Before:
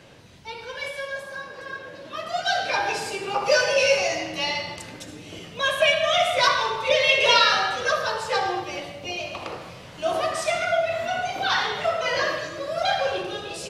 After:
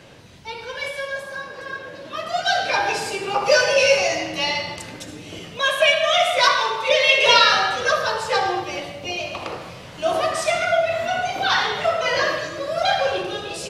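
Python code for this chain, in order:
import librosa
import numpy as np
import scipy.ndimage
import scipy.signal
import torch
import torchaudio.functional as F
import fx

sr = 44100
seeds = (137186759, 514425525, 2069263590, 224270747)

y = fx.low_shelf(x, sr, hz=190.0, db=-11.5, at=(5.57, 7.27))
y = y * librosa.db_to_amplitude(3.5)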